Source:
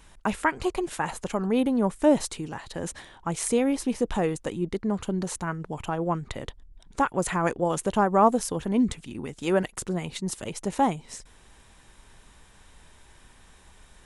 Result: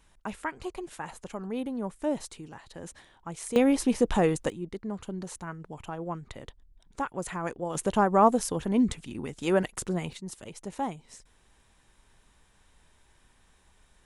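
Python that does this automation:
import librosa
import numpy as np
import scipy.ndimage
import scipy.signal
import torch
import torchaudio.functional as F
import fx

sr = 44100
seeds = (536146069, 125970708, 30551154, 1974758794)

y = fx.gain(x, sr, db=fx.steps((0.0, -9.5), (3.56, 2.0), (4.5, -8.0), (7.75, -1.0), (10.13, -9.0)))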